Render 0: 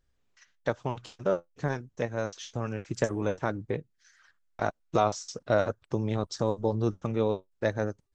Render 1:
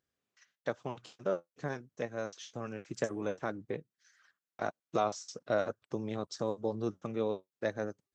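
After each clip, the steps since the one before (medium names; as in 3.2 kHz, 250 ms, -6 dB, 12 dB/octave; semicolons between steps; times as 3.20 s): high-pass 160 Hz 12 dB/octave; band-stop 910 Hz, Q 13; trim -5.5 dB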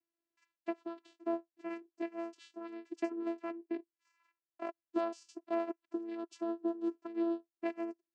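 dynamic bell 2.4 kHz, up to +7 dB, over -56 dBFS, Q 1.3; vocoder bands 8, saw 336 Hz; trim -2 dB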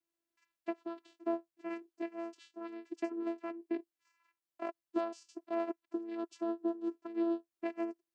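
random flutter of the level, depth 60%; trim +3 dB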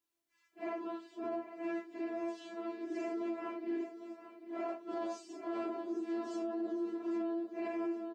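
phase randomisation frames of 200 ms; feedback delay 799 ms, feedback 46%, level -12.5 dB; peak limiter -33.5 dBFS, peak gain reduction 9.5 dB; trim +3 dB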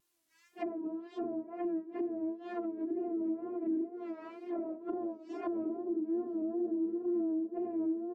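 low-pass that closes with the level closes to 360 Hz, closed at -37 dBFS; treble shelf 4.6 kHz +6 dB; wow and flutter 82 cents; trim +6.5 dB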